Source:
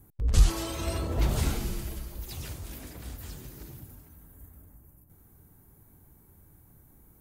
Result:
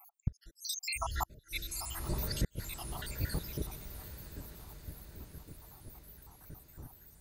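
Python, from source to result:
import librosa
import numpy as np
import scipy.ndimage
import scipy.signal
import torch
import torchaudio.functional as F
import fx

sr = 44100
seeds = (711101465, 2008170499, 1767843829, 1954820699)

y = fx.spec_dropout(x, sr, seeds[0], share_pct=84)
y = fx.echo_diffused(y, sr, ms=926, feedback_pct=58, wet_db=-16)
y = fx.gate_flip(y, sr, shuts_db=-31.0, range_db=-37)
y = F.gain(torch.from_numpy(y), 12.0).numpy()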